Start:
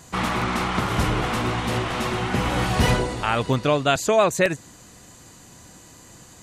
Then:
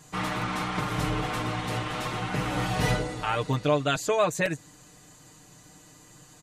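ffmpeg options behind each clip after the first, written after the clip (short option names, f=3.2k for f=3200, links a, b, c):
-af "aecho=1:1:6.6:0.75,volume=-7.5dB"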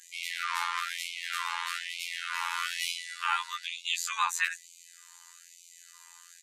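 -af "afftfilt=real='hypot(re,im)*cos(PI*b)':imag='0':win_size=2048:overlap=0.75,afftfilt=real='re*gte(b*sr/1024,790*pow(2100/790,0.5+0.5*sin(2*PI*1.1*pts/sr)))':imag='im*gte(b*sr/1024,790*pow(2100/790,0.5+0.5*sin(2*PI*1.1*pts/sr)))':win_size=1024:overlap=0.75,volume=5dB"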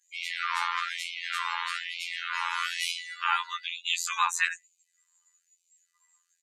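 -af "afftdn=nr=26:nf=-43,volume=2.5dB"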